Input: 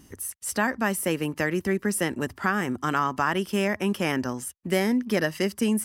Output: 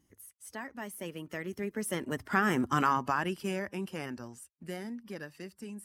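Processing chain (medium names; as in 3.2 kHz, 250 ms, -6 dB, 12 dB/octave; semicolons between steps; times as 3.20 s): coarse spectral quantiser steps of 15 dB; Doppler pass-by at 2.63 s, 16 m/s, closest 5.2 m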